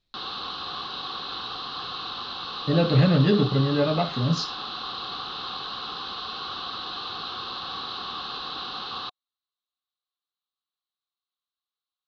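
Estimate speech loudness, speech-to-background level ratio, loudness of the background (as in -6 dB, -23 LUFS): -22.5 LUFS, 10.0 dB, -32.5 LUFS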